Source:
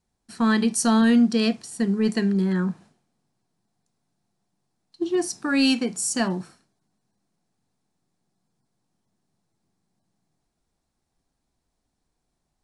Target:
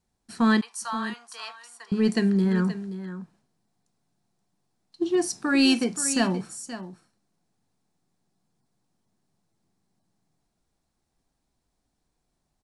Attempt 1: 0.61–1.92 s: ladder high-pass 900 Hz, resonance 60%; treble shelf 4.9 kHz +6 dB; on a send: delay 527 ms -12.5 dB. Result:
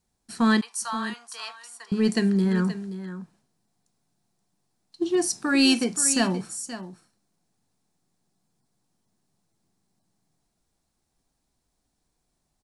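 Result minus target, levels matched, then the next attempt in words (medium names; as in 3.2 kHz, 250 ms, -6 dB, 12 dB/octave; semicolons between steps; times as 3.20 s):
8 kHz band +4.0 dB
0.61–1.92 s: ladder high-pass 900 Hz, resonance 60%; on a send: delay 527 ms -12.5 dB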